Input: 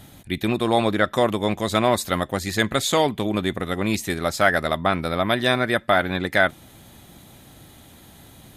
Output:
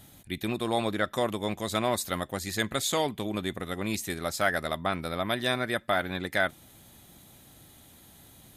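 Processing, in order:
high-shelf EQ 5,300 Hz +7 dB
level −8.5 dB

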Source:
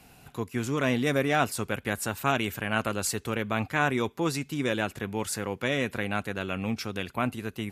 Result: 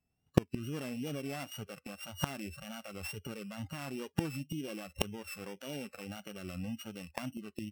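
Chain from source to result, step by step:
samples sorted by size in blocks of 16 samples
low-shelf EQ 440 Hz +8 dB
in parallel at −10.5 dB: soft clipping −18 dBFS, distortion −13 dB
on the sum: brickwall limiter −16 dBFS, peak gain reduction 9 dB
parametric band 82 Hz +6 dB 0.4 octaves
noise reduction from a noise print of the clip's start 28 dB
noise gate −40 dBFS, range −19 dB
automatic gain control gain up to 8 dB
gate with flip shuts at −18 dBFS, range −32 dB
tape wow and flutter 76 cents
level +10.5 dB

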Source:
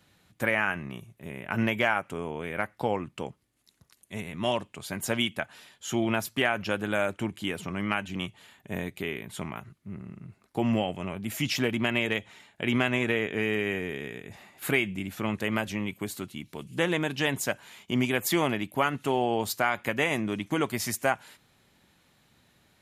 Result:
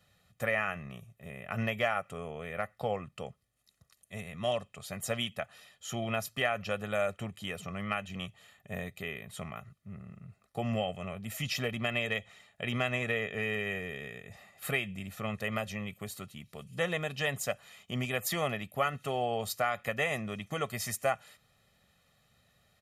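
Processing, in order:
comb filter 1.6 ms, depth 75%
level −6.5 dB

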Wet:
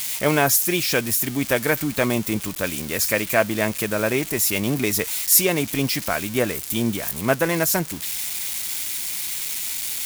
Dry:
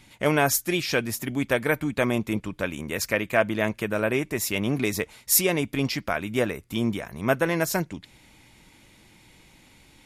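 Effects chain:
spike at every zero crossing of −21.5 dBFS
level +2.5 dB

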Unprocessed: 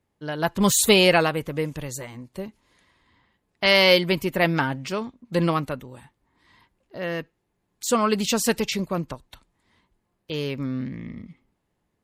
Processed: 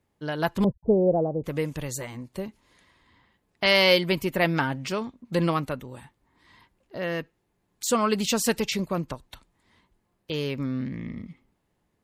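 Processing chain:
0:00.64–0:01.44: Butterworth low-pass 710 Hz 36 dB per octave
in parallel at −2.5 dB: downward compressor, threshold −31 dBFS, peak gain reduction 17.5 dB
on the sum: level −3.5 dB

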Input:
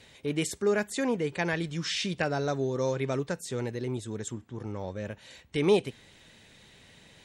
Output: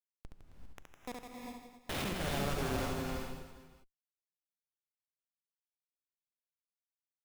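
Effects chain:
gain on one half-wave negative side −12 dB
0:01.89–0:02.86: high-pass filter 270 Hz 24 dB per octave
treble cut that deepens with the level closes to 1,500 Hz, closed at −24.5 dBFS
brickwall limiter −25 dBFS, peak gain reduction 11.5 dB
comparator with hysteresis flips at −35 dBFS
reverse bouncing-ball delay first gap 70 ms, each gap 1.25×, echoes 5
reverb whose tail is shaped and stops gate 420 ms rising, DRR 1.5 dB

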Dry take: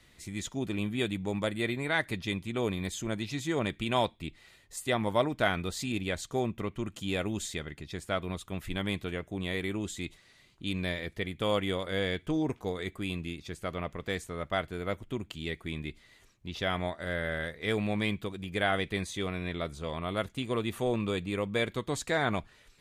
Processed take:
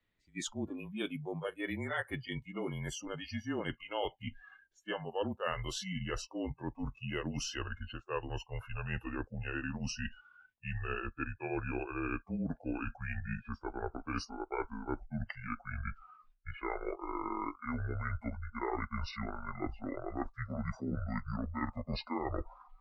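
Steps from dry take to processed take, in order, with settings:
pitch glide at a constant tempo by −10.5 semitones starting unshifted
low-pass that shuts in the quiet parts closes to 3,000 Hz, open at −28 dBFS
reversed playback
downward compressor 4 to 1, threshold −42 dBFS, peak gain reduction 17 dB
reversed playback
noise reduction from a noise print of the clip's start 27 dB
frequency shifter −31 Hz
level +7.5 dB

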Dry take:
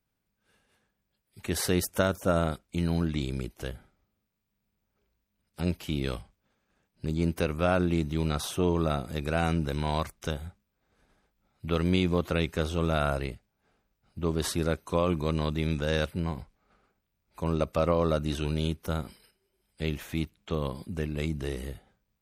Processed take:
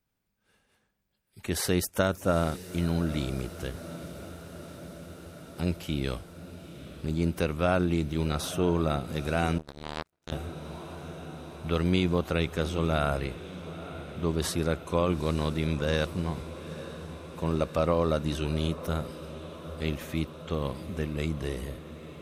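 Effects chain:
feedback delay with all-pass diffusion 894 ms, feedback 74%, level −14.5 dB
0:09.58–0:10.32: power curve on the samples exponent 3

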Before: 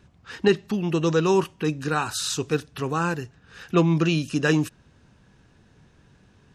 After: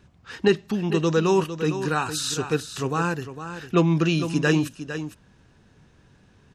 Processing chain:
single-tap delay 455 ms −10.5 dB

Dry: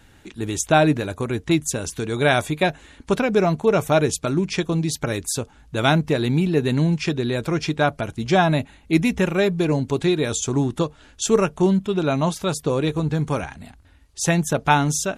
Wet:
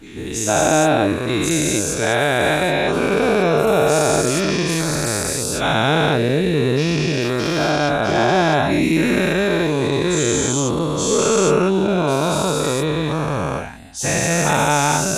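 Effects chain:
every bin's largest magnitude spread in time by 480 ms
in parallel at −2 dB: brickwall limiter −3 dBFS, peak gain reduction 9 dB
on the sum: level −9.5 dB

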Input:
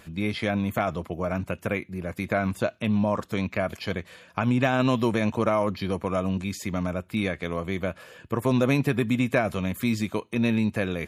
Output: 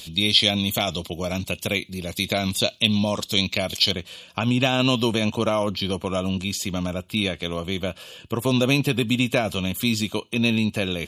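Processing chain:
high shelf with overshoot 2,400 Hz +14 dB, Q 3, from 0:03.91 +7 dB
level +1.5 dB

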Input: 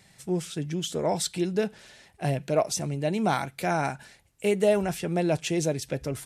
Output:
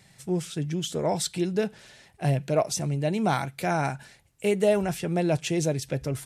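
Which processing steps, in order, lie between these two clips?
parametric band 130 Hz +5 dB 0.52 octaves

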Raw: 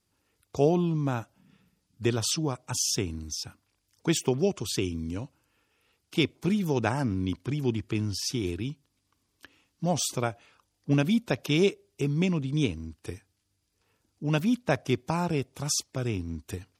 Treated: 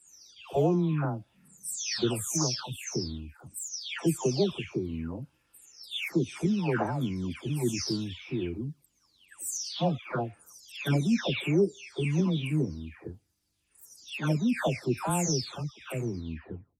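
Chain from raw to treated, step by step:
every frequency bin delayed by itself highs early, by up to 585 ms

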